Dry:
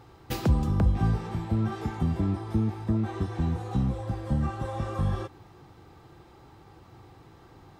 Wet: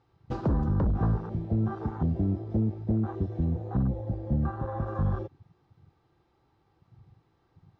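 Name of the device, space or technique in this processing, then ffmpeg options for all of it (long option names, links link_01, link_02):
synthesiser wavefolder: -filter_complex "[0:a]asettb=1/sr,asplit=3[link_01][link_02][link_03];[link_01]atrim=end=3.444[link_04];[link_02]atrim=start=3.44:end=4.87,asetpts=PTS-STARTPTS,afade=type=in:duration=0.004:curve=qsin,afade=type=out:start_time=1.426:duration=0.004:curve=qsin,acrossover=split=2900[link_05][link_06];[link_06]acompressor=threshold=-59dB:ratio=4:attack=1:release=60[link_07];[link_05][link_07]amix=inputs=2:normalize=0[link_08];[link_03]atrim=start=4.866[link_09];[link_04][link_08]acrossfade=duration=0.004:curve1=hsin:curve2=qsin[link_10];[link_10][link_09]acrossfade=duration=0.004:curve1=qsin:curve2=hsin,aeval=exprs='0.112*(abs(mod(val(0)/0.112+3,4)-2)-1)':channel_layout=same,lowpass=frequency=6200:width=0.5412,lowpass=frequency=6200:width=1.3066,afwtdn=0.02"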